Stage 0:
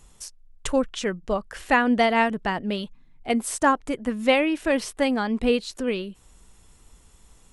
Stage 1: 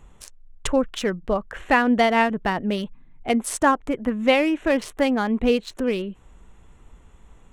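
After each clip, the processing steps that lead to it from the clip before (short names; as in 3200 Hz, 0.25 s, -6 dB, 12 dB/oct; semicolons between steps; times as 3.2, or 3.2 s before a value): Wiener smoothing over 9 samples; in parallel at -2.5 dB: compressor, threshold -28 dBFS, peak gain reduction 13.5 dB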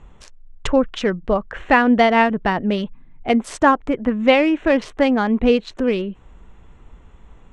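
air absorption 110 m; gain +4.5 dB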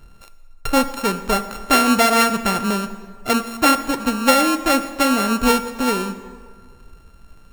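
sample sorter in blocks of 32 samples; plate-style reverb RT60 1.8 s, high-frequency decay 0.65×, DRR 10 dB; gain -1.5 dB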